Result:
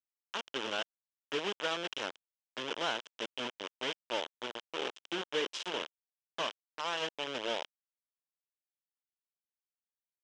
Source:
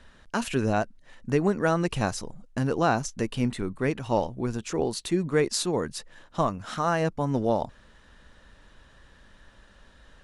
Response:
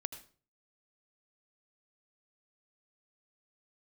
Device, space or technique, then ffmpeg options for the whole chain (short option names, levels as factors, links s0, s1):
hand-held game console: -filter_complex "[0:a]asettb=1/sr,asplit=3[s0][s1][s2];[s0]atrim=end=4.764[s3];[s1]atrim=start=4.76:end=5.96,asetpts=PTS-STARTPTS,afade=t=in:d=0.004:c=qsin,afade=t=out:st=1.196:d=0.004:c=qsin,asplit=2[s4][s5];[s5]adelay=43,volume=0.251[s6];[s4][s6]amix=inputs=2:normalize=0,atrim=end_sample=52920[s7];[s2]atrim=start=5.956[s8];[s3][s7]acrossfade=d=0.004:c1=hsin:c2=qsin[s9];[s9][s8]acrossfade=d=0.004:c1=qsin:c2=hsin,acrusher=bits=3:mix=0:aa=0.000001,highpass=470,equalizer=f=740:t=q:w=4:g=-8,equalizer=f=1200:t=q:w=4:g=-4,equalizer=f=2000:t=q:w=4:g=-5,equalizer=f=3100:t=q:w=4:g=10,equalizer=f=4400:t=q:w=4:g=-9,lowpass=f=5500:w=0.5412,lowpass=f=5500:w=1.3066,volume=0.422"